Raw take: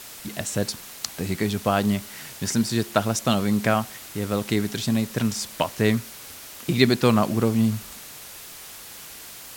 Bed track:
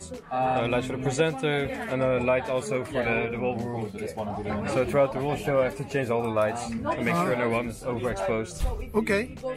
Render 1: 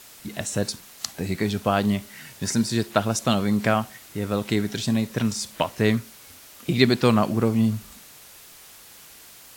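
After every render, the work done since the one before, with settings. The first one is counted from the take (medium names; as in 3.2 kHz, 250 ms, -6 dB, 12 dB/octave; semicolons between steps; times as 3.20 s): noise print and reduce 6 dB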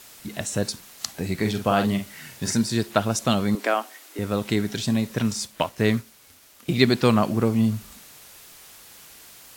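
1.34–2.57 s: doubling 46 ms -7 dB; 3.55–4.19 s: elliptic high-pass 280 Hz, stop band 60 dB; 5.46–6.89 s: companding laws mixed up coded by A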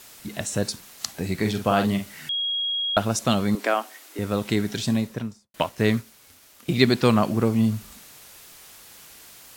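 2.29–2.97 s: bleep 3.29 kHz -23 dBFS; 4.89–5.54 s: studio fade out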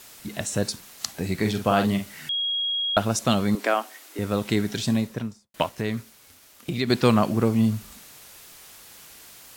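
5.77–6.90 s: compression 2:1, threshold -27 dBFS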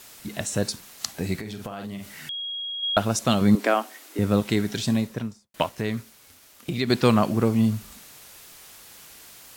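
1.36–2.83 s: compression 12:1, threshold -30 dBFS; 3.41–4.41 s: peaking EQ 150 Hz +6.5 dB 2.6 oct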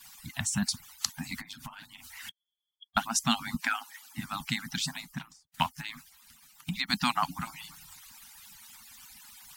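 harmonic-percussive separation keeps percussive; Chebyshev band-stop 240–820 Hz, order 3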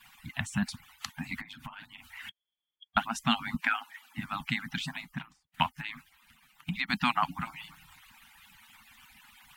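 resonant high shelf 3.8 kHz -10.5 dB, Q 1.5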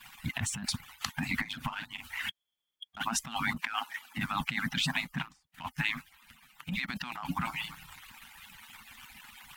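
compressor with a negative ratio -37 dBFS, ratio -1; waveshaping leveller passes 1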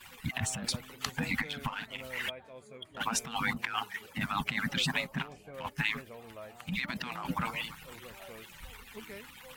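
add bed track -22.5 dB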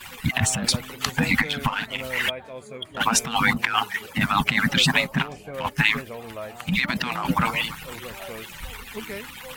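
trim +11.5 dB; peak limiter -2 dBFS, peak gain reduction 2 dB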